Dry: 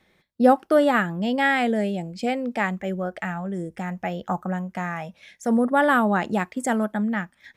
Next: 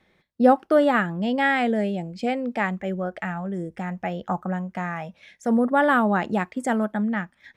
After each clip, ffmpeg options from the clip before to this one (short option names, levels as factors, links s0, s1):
-af "highshelf=f=6200:g=-9.5"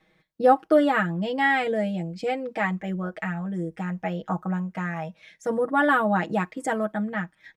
-af "aecho=1:1:6.3:0.89,volume=0.668"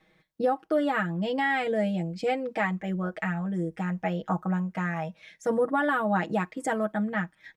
-af "alimiter=limit=0.158:level=0:latency=1:release=417"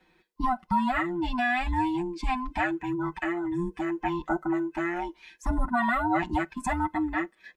-af "afftfilt=real='real(if(between(b,1,1008),(2*floor((b-1)/24)+1)*24-b,b),0)':imag='imag(if(between(b,1,1008),(2*floor((b-1)/24)+1)*24-b,b),0)*if(between(b,1,1008),-1,1)':win_size=2048:overlap=0.75"